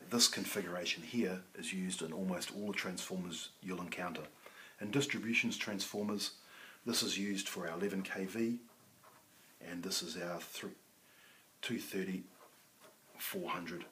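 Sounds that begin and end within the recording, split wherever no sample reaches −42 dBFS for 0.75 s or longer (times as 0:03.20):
0:09.63–0:10.68
0:11.63–0:12.20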